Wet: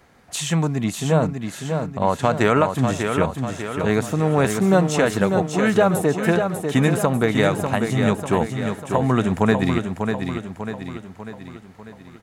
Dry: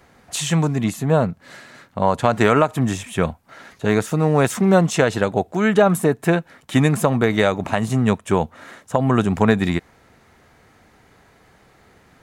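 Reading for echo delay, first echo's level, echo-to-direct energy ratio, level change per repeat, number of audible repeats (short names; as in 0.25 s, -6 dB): 0.595 s, -6.0 dB, -4.5 dB, -6.0 dB, 5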